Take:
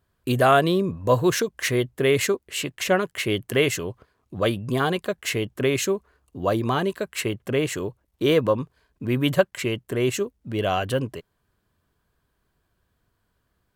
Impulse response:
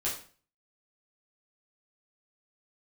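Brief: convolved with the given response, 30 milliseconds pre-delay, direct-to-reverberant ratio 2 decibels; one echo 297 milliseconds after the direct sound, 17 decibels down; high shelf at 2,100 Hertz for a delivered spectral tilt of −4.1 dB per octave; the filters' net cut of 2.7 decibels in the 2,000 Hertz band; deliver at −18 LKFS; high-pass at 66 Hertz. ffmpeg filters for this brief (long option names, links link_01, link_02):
-filter_complex "[0:a]highpass=66,equalizer=frequency=2000:width_type=o:gain=-8.5,highshelf=frequency=2100:gain=7.5,aecho=1:1:297:0.141,asplit=2[link_01][link_02];[1:a]atrim=start_sample=2205,adelay=30[link_03];[link_02][link_03]afir=irnorm=-1:irlink=0,volume=-7.5dB[link_04];[link_01][link_04]amix=inputs=2:normalize=0,volume=3dB"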